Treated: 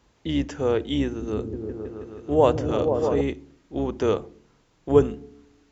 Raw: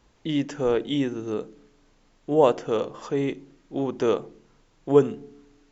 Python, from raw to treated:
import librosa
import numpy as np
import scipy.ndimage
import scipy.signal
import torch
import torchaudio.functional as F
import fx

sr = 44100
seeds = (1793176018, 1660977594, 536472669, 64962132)

y = fx.octave_divider(x, sr, octaves=2, level_db=-6.0)
y = scipy.signal.sosfilt(scipy.signal.butter(2, 42.0, 'highpass', fs=sr, output='sos'), y)
y = fx.echo_opening(y, sr, ms=160, hz=200, octaves=1, feedback_pct=70, wet_db=0, at=(1.05, 3.21))